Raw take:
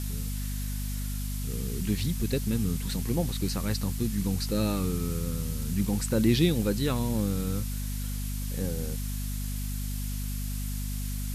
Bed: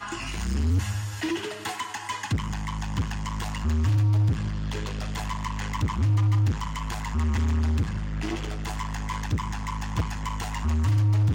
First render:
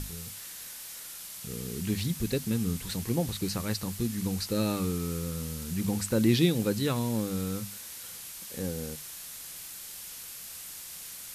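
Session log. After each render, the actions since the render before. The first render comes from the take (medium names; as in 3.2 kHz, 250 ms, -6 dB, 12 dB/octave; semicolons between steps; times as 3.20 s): hum notches 50/100/150/200/250 Hz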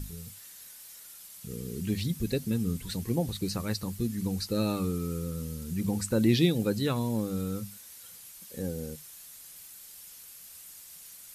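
noise reduction 9 dB, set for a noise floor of -43 dBFS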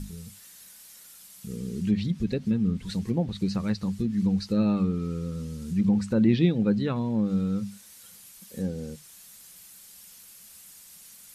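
low-pass that closes with the level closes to 2.7 kHz, closed at -24.5 dBFS; peaking EQ 200 Hz +10 dB 0.32 oct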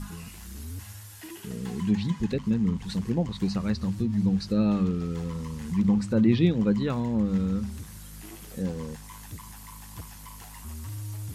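add bed -15 dB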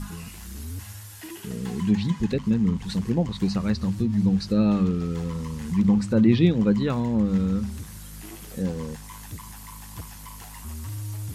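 trim +3 dB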